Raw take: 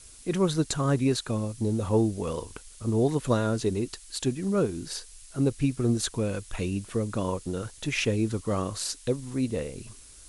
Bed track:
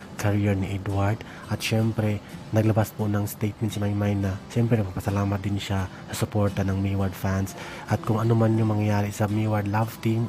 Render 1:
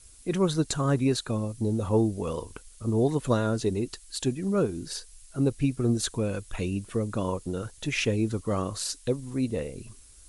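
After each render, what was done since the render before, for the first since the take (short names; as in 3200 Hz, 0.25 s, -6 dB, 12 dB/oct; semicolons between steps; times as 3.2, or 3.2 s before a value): denoiser 6 dB, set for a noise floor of -50 dBFS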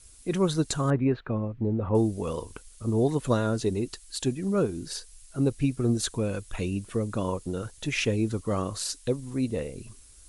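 0.9–1.95 LPF 2300 Hz 24 dB/oct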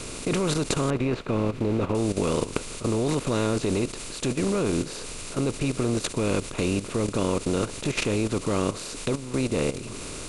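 per-bin compression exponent 0.4; level quantiser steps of 12 dB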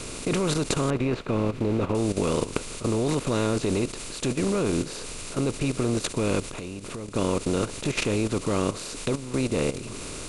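6.4–7.16 compressor 12:1, threshold -31 dBFS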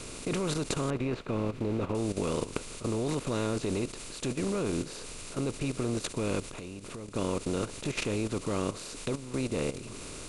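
gain -6 dB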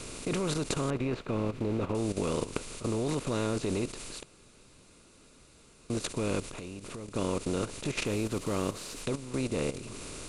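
4.23–5.9 room tone; 8.06–9.03 CVSD 64 kbps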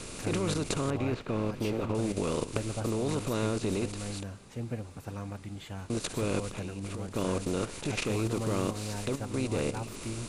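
add bed track -14.5 dB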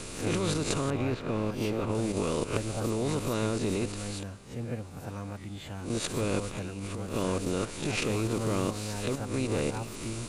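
spectral swells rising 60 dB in 0.39 s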